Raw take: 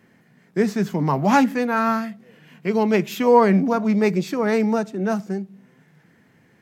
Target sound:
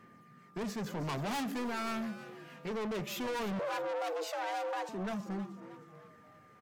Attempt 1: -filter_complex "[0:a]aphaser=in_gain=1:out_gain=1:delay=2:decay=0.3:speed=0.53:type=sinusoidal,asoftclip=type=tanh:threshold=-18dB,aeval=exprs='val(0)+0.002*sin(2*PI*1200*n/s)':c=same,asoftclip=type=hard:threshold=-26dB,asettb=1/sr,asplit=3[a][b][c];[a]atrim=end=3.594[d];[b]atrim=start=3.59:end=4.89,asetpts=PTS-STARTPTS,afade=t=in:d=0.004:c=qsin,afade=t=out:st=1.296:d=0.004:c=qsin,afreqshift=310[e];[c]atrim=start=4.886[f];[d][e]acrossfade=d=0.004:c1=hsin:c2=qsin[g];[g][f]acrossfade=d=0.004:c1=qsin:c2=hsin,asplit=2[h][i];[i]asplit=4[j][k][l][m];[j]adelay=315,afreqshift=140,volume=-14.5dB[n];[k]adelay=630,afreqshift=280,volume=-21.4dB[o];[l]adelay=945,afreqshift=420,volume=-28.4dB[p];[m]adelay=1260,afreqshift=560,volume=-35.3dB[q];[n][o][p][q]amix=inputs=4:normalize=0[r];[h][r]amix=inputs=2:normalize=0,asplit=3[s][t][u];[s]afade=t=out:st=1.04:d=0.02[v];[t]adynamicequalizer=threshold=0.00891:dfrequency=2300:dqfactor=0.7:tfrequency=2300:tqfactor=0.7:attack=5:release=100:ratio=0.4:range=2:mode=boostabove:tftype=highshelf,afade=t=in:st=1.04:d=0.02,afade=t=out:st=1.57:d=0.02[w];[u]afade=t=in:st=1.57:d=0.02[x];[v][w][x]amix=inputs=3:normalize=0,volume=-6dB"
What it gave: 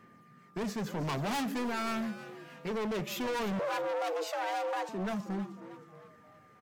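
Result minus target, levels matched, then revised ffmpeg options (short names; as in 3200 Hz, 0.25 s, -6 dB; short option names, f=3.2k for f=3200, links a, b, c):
soft clip: distortion -5 dB
-filter_complex "[0:a]aphaser=in_gain=1:out_gain=1:delay=2:decay=0.3:speed=0.53:type=sinusoidal,asoftclip=type=tanh:threshold=-28.5dB,aeval=exprs='val(0)+0.002*sin(2*PI*1200*n/s)':c=same,asoftclip=type=hard:threshold=-26dB,asettb=1/sr,asplit=3[a][b][c];[a]atrim=end=3.594[d];[b]atrim=start=3.59:end=4.89,asetpts=PTS-STARTPTS,afade=t=in:d=0.004:c=qsin,afade=t=out:st=1.296:d=0.004:c=qsin,afreqshift=310[e];[c]atrim=start=4.886[f];[d][e]acrossfade=d=0.004:c1=hsin:c2=qsin[g];[g][f]acrossfade=d=0.004:c1=qsin:c2=hsin,asplit=2[h][i];[i]asplit=4[j][k][l][m];[j]adelay=315,afreqshift=140,volume=-14.5dB[n];[k]adelay=630,afreqshift=280,volume=-21.4dB[o];[l]adelay=945,afreqshift=420,volume=-28.4dB[p];[m]adelay=1260,afreqshift=560,volume=-35.3dB[q];[n][o][p][q]amix=inputs=4:normalize=0[r];[h][r]amix=inputs=2:normalize=0,asplit=3[s][t][u];[s]afade=t=out:st=1.04:d=0.02[v];[t]adynamicequalizer=threshold=0.00891:dfrequency=2300:dqfactor=0.7:tfrequency=2300:tqfactor=0.7:attack=5:release=100:ratio=0.4:range=2:mode=boostabove:tftype=highshelf,afade=t=in:st=1.04:d=0.02,afade=t=out:st=1.57:d=0.02[w];[u]afade=t=in:st=1.57:d=0.02[x];[v][w][x]amix=inputs=3:normalize=0,volume=-6dB"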